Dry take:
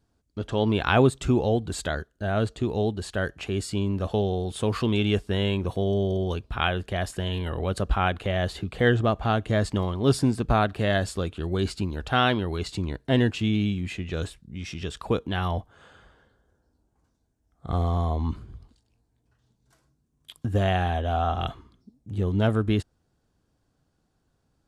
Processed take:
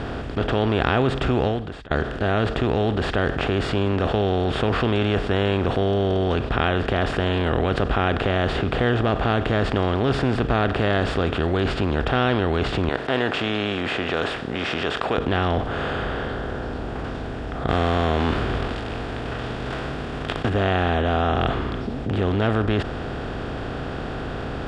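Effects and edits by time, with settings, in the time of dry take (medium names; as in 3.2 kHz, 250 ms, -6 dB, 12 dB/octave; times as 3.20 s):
1.47–1.91 s: fade out exponential
12.89–15.18 s: high-pass 630 Hz
17.68–20.48 s: formants flattened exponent 0.6
whole clip: spectral levelling over time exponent 0.4; low-pass 3.4 kHz 12 dB/octave; level flattener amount 50%; trim -5 dB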